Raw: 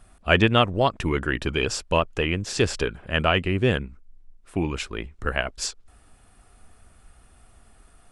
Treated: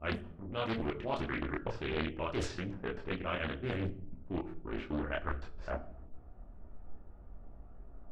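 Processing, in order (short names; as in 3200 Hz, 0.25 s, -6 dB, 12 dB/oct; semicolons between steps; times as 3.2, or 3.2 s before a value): slices in reverse order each 0.129 s, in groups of 3; LPF 3700 Hz 6 dB/oct; low-pass opened by the level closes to 740 Hz, open at -15.5 dBFS; reverse; compressor 6:1, threshold -33 dBFS, peak gain reduction 18 dB; reverse; chorus voices 2, 0.25 Hz, delay 25 ms, depth 2.5 ms; buzz 60 Hz, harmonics 15, -69 dBFS -4 dB/oct; on a send at -8.5 dB: reverb RT60 0.60 s, pre-delay 3 ms; on the sum: Doppler distortion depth 0.78 ms; gain +2.5 dB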